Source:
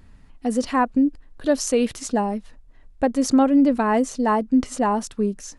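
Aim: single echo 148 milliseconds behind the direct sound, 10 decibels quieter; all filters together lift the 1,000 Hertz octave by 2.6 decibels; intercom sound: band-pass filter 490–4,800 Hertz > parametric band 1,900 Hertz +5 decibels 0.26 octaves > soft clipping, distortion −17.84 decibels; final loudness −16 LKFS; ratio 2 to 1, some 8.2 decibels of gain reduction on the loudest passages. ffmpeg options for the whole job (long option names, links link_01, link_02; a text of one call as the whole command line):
ffmpeg -i in.wav -af "equalizer=frequency=1000:width_type=o:gain=3.5,acompressor=threshold=-28dB:ratio=2,highpass=490,lowpass=4800,equalizer=frequency=1900:width_type=o:width=0.26:gain=5,aecho=1:1:148:0.316,asoftclip=threshold=-20dB,volume=17dB" out.wav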